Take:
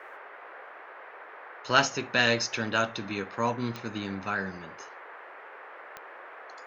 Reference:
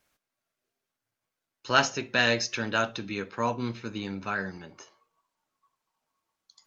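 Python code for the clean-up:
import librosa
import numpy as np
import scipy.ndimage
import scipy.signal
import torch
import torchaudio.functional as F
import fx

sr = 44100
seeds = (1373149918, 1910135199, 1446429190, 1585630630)

y = fx.fix_declick_ar(x, sr, threshold=10.0)
y = fx.noise_reduce(y, sr, print_start_s=0.64, print_end_s=1.14, reduce_db=30.0)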